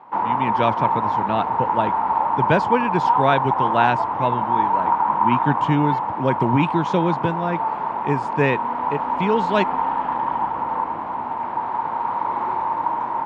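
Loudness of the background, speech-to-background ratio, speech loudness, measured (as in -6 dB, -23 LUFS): -22.5 LUFS, -1.0 dB, -23.5 LUFS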